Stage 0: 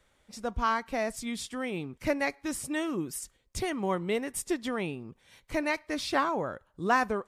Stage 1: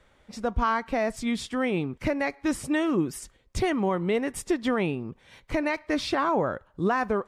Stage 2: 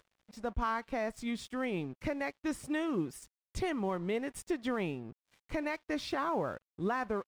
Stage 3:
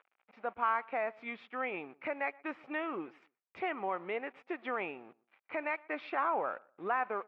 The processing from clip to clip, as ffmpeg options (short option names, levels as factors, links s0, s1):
-af "lowpass=f=2700:p=1,alimiter=limit=0.0708:level=0:latency=1:release=150,volume=2.51"
-af "acompressor=mode=upward:threshold=0.00562:ratio=2.5,aeval=exprs='sgn(val(0))*max(abs(val(0))-0.00376,0)':c=same,volume=0.398"
-filter_complex "[0:a]acrusher=bits=10:mix=0:aa=0.000001,highpass=470,equalizer=f=790:t=q:w=4:g=5,equalizer=f=1300:t=q:w=4:g=5,equalizer=f=2400:t=q:w=4:g=7,lowpass=f=2600:w=0.5412,lowpass=f=2600:w=1.3066,asplit=2[s0][s1];[s1]adelay=121,lowpass=f=1700:p=1,volume=0.0708,asplit=2[s2][s3];[s3]adelay=121,lowpass=f=1700:p=1,volume=0.23[s4];[s0][s2][s4]amix=inputs=3:normalize=0"